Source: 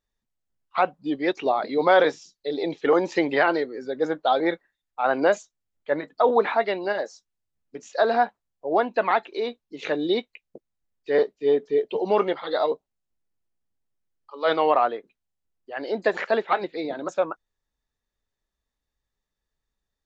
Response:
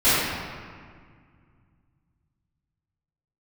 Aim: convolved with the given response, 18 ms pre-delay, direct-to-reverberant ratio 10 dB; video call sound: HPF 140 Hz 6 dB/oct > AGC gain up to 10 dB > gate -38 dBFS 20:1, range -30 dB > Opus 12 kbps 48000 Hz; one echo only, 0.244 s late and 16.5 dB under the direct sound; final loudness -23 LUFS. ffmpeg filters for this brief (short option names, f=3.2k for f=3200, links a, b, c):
-filter_complex "[0:a]aecho=1:1:244:0.15,asplit=2[a][b];[1:a]atrim=start_sample=2205,adelay=18[c];[b][c]afir=irnorm=-1:irlink=0,volume=-31dB[d];[a][d]amix=inputs=2:normalize=0,highpass=f=140:p=1,dynaudnorm=m=10dB,agate=range=-30dB:threshold=-38dB:ratio=20,volume=-0.5dB" -ar 48000 -c:a libopus -b:a 12k